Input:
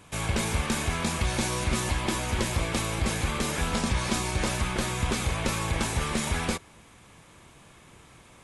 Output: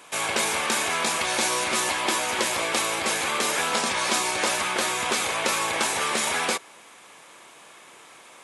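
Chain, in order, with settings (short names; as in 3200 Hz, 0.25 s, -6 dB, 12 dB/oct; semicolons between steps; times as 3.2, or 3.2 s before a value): HPF 470 Hz 12 dB/oct; gain +7 dB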